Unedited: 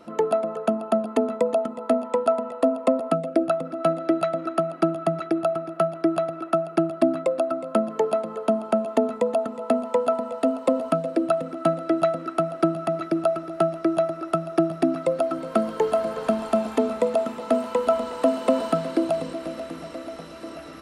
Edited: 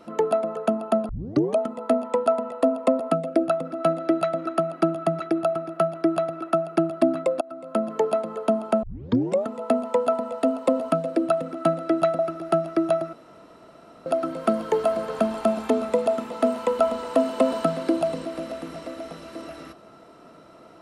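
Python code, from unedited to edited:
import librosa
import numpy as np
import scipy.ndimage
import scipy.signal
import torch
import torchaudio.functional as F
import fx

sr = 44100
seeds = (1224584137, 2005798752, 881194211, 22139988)

y = fx.edit(x, sr, fx.tape_start(start_s=1.09, length_s=0.48),
    fx.fade_in_from(start_s=7.41, length_s=0.5, floor_db=-23.5),
    fx.tape_start(start_s=8.83, length_s=0.63),
    fx.cut(start_s=12.19, length_s=1.08),
    fx.room_tone_fill(start_s=14.21, length_s=0.93), tone=tone)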